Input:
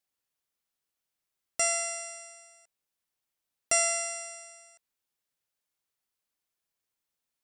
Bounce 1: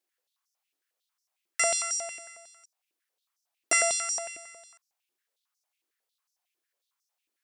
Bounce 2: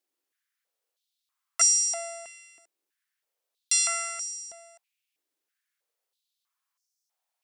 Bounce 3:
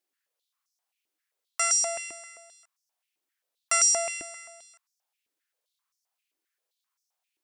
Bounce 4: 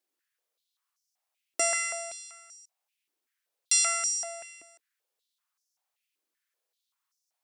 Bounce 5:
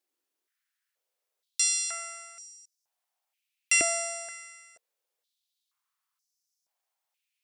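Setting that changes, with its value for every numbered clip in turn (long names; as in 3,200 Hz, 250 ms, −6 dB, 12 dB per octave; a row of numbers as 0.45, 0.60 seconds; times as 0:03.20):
high-pass on a step sequencer, speed: 11, 3.1, 7.6, 5.2, 2.1 Hertz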